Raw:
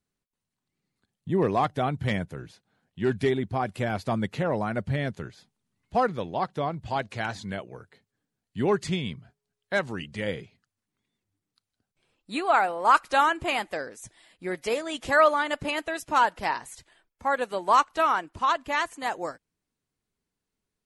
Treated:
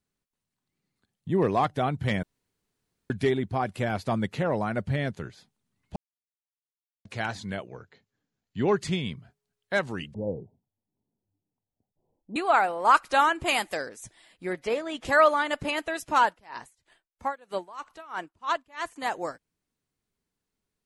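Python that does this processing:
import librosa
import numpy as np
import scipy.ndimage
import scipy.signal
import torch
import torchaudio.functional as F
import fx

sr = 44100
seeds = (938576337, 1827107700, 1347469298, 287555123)

y = fx.brickwall_lowpass(x, sr, high_hz=7500.0, at=(7.67, 8.77))
y = fx.steep_lowpass(y, sr, hz=940.0, slope=72, at=(10.14, 12.36))
y = fx.high_shelf(y, sr, hz=4500.0, db=11.5, at=(13.46, 13.89))
y = fx.lowpass(y, sr, hz=2800.0, slope=6, at=(14.53, 15.05))
y = fx.tremolo_db(y, sr, hz=3.1, depth_db=26, at=(16.28, 18.96))
y = fx.edit(y, sr, fx.room_tone_fill(start_s=2.23, length_s=0.87),
    fx.silence(start_s=5.96, length_s=1.09), tone=tone)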